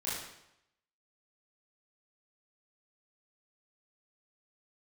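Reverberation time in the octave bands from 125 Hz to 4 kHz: 0.80, 0.80, 0.80, 0.80, 0.80, 0.75 s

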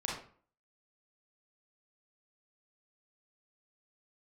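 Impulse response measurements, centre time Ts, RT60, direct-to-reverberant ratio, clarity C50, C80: 45 ms, 0.45 s, -4.0 dB, 2.5 dB, 8.0 dB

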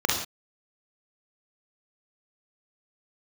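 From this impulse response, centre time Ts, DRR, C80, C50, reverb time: 45 ms, -2.0 dB, 7.0 dB, 3.0 dB, not exponential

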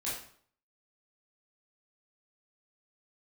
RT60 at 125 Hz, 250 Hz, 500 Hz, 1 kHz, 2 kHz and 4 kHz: 0.60, 0.55, 0.55, 0.55, 0.50, 0.45 s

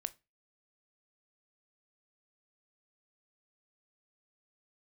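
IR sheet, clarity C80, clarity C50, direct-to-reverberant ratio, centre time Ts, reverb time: 30.0 dB, 22.5 dB, 13.0 dB, 2 ms, 0.25 s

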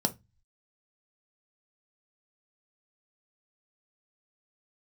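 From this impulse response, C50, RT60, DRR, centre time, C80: 20.0 dB, 0.20 s, 6.0 dB, 5 ms, 31.0 dB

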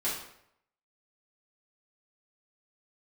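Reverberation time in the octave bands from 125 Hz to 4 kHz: 0.80, 0.70, 0.75, 0.70, 0.65, 0.55 s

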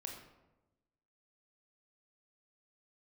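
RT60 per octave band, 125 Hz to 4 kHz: 1.3, 1.3, 1.1, 0.95, 0.75, 0.55 s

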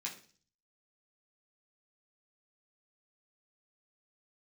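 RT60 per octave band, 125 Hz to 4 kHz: 0.75, 0.55, 0.45, 0.40, 0.40, 0.55 s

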